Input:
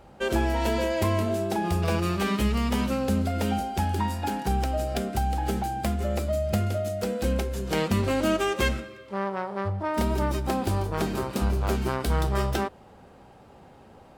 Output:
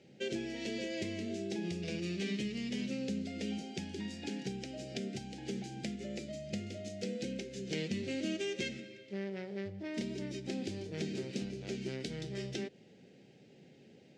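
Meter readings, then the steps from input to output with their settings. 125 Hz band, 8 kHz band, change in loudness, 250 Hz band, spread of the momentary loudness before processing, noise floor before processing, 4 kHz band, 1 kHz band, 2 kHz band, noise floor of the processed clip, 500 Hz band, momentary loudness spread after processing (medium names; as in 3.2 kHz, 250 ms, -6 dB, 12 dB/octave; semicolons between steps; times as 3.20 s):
-16.0 dB, -10.0 dB, -12.5 dB, -9.5 dB, 4 LU, -51 dBFS, -7.5 dB, -26.0 dB, -11.5 dB, -60 dBFS, -12.5 dB, 5 LU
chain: FFT filter 420 Hz 0 dB, 1.1 kHz -21 dB, 2 kHz +2 dB; compression 2:1, threshold -31 dBFS, peak gain reduction 6.5 dB; Chebyshev band-pass 140–6500 Hz, order 3; peaking EQ 1.1 kHz -9 dB 0.77 oct; trim -4 dB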